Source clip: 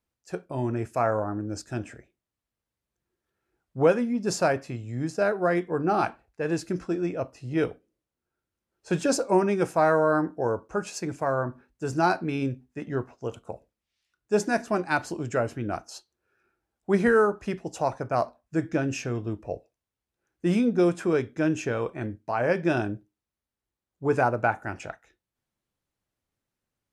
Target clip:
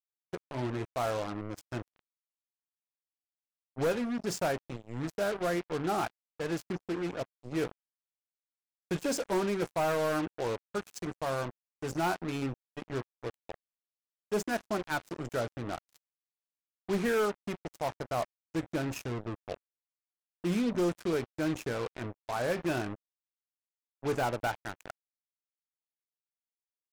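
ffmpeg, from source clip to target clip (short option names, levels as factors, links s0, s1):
-af "volume=8.91,asoftclip=hard,volume=0.112,acrusher=bits=4:mix=0:aa=0.5,volume=0.473"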